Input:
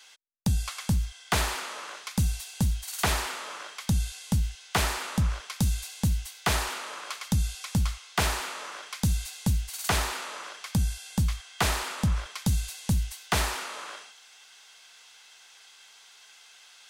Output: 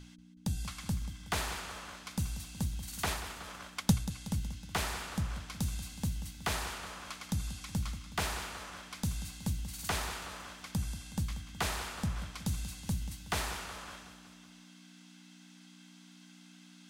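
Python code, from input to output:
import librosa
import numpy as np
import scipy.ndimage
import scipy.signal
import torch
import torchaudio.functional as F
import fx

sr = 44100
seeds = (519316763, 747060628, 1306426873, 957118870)

p1 = fx.transient(x, sr, attack_db=10, sustain_db=-8, at=(3.06, 4.11))
p2 = fx.add_hum(p1, sr, base_hz=60, snr_db=11)
p3 = fx.hum_notches(p2, sr, base_hz=60, count=2)
p4 = p3 + fx.echo_feedback(p3, sr, ms=185, feedback_pct=59, wet_db=-13, dry=0)
y = F.gain(torch.from_numpy(p4), -8.0).numpy()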